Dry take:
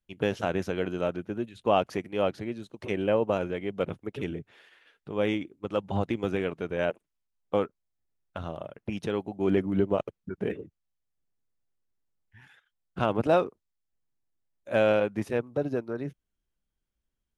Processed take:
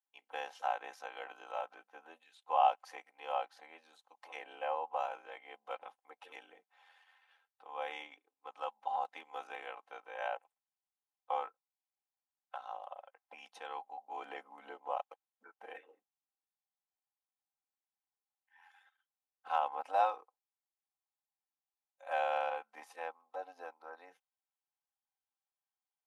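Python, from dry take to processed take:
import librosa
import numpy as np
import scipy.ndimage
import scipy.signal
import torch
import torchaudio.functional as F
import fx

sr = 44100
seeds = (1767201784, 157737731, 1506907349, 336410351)

y = fx.stretch_grains(x, sr, factor=1.5, grain_ms=23.0)
y = fx.ladder_highpass(y, sr, hz=760.0, resonance_pct=70)
y = F.gain(torch.from_numpy(y), 1.5).numpy()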